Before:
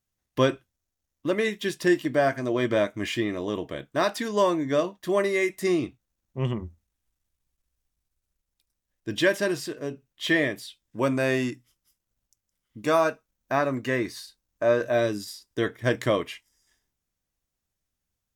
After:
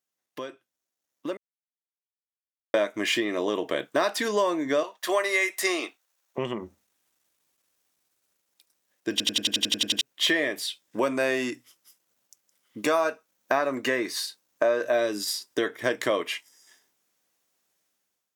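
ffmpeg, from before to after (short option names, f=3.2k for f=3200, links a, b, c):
-filter_complex "[0:a]asettb=1/sr,asplit=3[a][b][c];[a]atrim=end=4.834[d];[b]atrim=start=4.83:end=6.38,asetpts=PTS-STARTPTS,afade=t=in:d=0.004:c=qsin,afade=t=out:st=1.546:d=0.004:c=qsin,highpass=680[e];[c]atrim=start=6.376[f];[d][e]acrossfade=d=0.004:c1=hsin:c2=qsin[g];[g][f]acrossfade=d=0.004:c1=qsin:c2=hsin,asplit=13[h][i][j][k][l][m][n][o][p][q][r][s][t];[h]atrim=end=1.37,asetpts=PTS-STARTPTS,afade=t=out:st=1.366:d=0.004:c=hsin[u];[i]atrim=start=1.37:end=2.74,asetpts=PTS-STARTPTS,volume=0[v];[j]atrim=start=2.74:end=9.202,asetpts=PTS-STARTPTS,afade=t=in:d=0.004:c=hsin[w];[k]atrim=start=9.108:end=9.202[x];[l]atrim=start=9.108:end=9.202[y];[m]atrim=start=9.108:end=9.202[z];[n]atrim=start=9.108:end=9.202[aa];[o]atrim=start=9.108:end=9.202[ab];[p]atrim=start=9.108:end=9.202[ac];[q]atrim=start=9.108:end=9.202[ad];[r]atrim=start=9.108:end=9.202[ae];[s]atrim=start=9.108:end=9.202[af];[t]atrim=start=10.008[ag];[u][v][w]concat=n=3:v=0:a=1[ah];[ah][x]acrossfade=d=0.004:c1=hsin:c2=hsin[ai];[ai][y]acrossfade=d=0.004:c1=hsin:c2=hsin[aj];[aj][z]acrossfade=d=0.004:c1=hsin:c2=hsin[ak];[ak][aa]acrossfade=d=0.004:c1=hsin:c2=hsin[al];[al][ab]acrossfade=d=0.004:c1=hsin:c2=hsin[am];[am][ac]acrossfade=d=0.004:c1=hsin:c2=hsin[an];[an][ad]acrossfade=d=0.004:c1=hsin:c2=hsin[ao];[ao][ae]acrossfade=d=0.004:c1=hsin:c2=hsin[ap];[ap][af]acrossfade=d=0.004:c1=hsin:c2=hsin[aq];[aq][ag]acrossfade=d=0.004:c1=hsin:c2=hsin,acompressor=threshold=-32dB:ratio=6,highpass=340,dynaudnorm=f=990:g=3:m=13dB,volume=-1.5dB"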